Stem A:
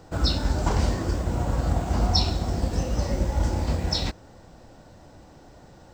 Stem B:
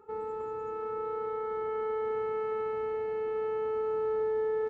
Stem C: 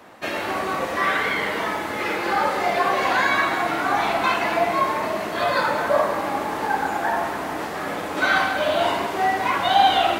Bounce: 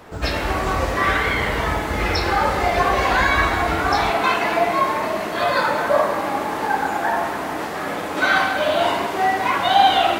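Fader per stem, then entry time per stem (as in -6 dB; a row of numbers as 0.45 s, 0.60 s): -3.0 dB, -5.5 dB, +2.0 dB; 0.00 s, 0.00 s, 0.00 s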